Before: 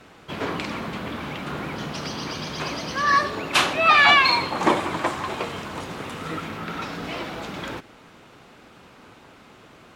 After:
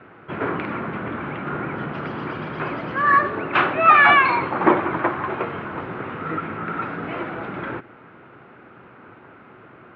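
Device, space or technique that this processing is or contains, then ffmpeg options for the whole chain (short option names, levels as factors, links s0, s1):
bass cabinet: -af "highpass=87,equalizer=f=120:t=q:w=4:g=5,equalizer=f=360:t=q:w=4:g=5,equalizer=f=1400:t=q:w=4:g=6,lowpass=f=2300:w=0.5412,lowpass=f=2300:w=1.3066,volume=1.19"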